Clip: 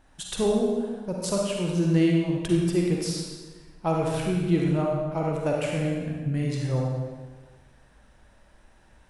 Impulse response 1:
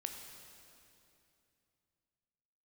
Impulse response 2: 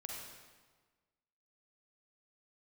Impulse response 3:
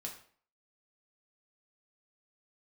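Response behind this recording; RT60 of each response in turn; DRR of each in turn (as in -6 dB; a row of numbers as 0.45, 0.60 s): 2; 2.7, 1.4, 0.50 s; 3.5, -2.0, -1.0 dB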